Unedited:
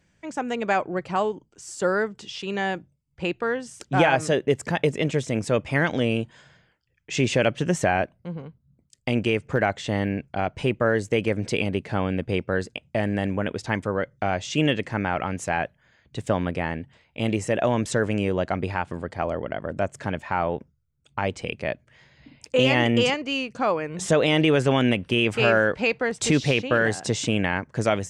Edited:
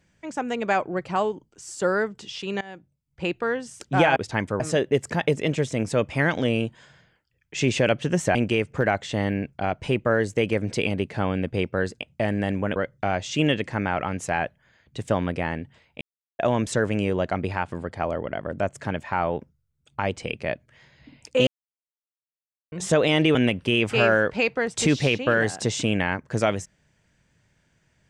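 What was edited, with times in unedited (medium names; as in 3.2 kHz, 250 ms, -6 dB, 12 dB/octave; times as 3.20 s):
2.61–3.26 s: fade in, from -21.5 dB
7.91–9.10 s: delete
13.51–13.95 s: move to 4.16 s
17.20–17.58 s: mute
22.66–23.91 s: mute
24.54–24.79 s: delete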